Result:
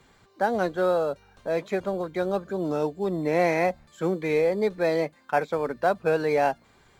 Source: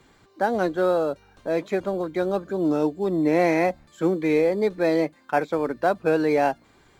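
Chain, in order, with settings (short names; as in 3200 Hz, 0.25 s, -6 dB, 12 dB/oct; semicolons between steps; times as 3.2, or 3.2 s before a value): bell 310 Hz -8 dB 0.35 oct; gain -1 dB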